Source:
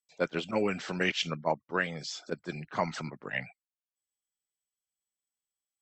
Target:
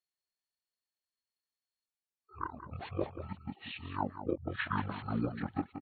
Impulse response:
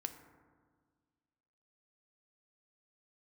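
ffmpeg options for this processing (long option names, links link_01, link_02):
-af "areverse,aecho=1:1:184:0.299,asetrate=24046,aresample=44100,atempo=1.83401,volume=-4.5dB"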